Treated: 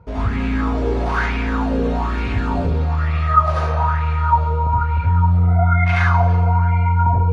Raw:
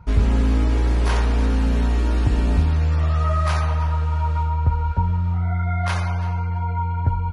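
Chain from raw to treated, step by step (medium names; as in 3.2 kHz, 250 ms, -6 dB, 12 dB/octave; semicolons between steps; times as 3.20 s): high-pass 71 Hz 12 dB/octave; bass shelf 110 Hz +6 dB; peak limiter -15 dBFS, peak gain reduction 9.5 dB; distance through air 72 m; reverberation RT60 0.45 s, pre-delay 67 ms, DRR -6.5 dB; sweeping bell 1.1 Hz 460–2400 Hz +16 dB; trim -5 dB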